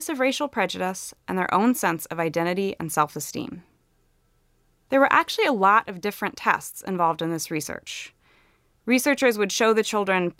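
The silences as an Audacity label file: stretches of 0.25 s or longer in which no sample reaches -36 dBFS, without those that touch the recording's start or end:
3.590000	4.920000	silence
8.080000	8.870000	silence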